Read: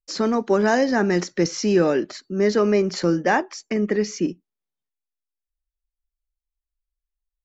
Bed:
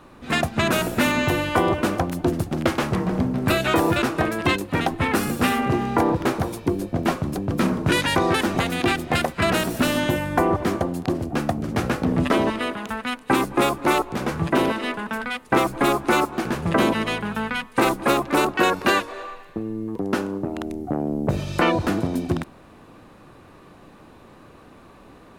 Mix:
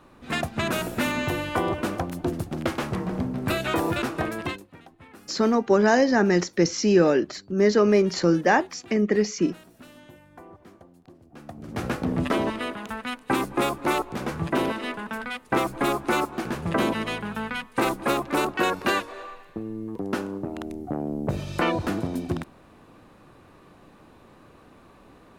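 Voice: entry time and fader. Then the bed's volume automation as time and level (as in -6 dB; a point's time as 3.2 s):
5.20 s, 0.0 dB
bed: 4.4 s -5.5 dB
4.79 s -27 dB
11.22 s -27 dB
11.86 s -4.5 dB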